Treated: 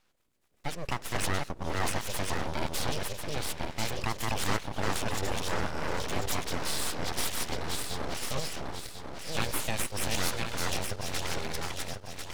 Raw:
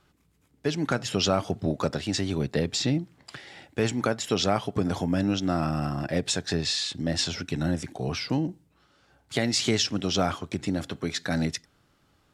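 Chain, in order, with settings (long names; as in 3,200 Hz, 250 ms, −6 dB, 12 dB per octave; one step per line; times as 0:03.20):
feedback delay that plays each chunk backwards 522 ms, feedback 61%, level −1 dB
low-shelf EQ 240 Hz −8 dB
full-wave rectification
level −3 dB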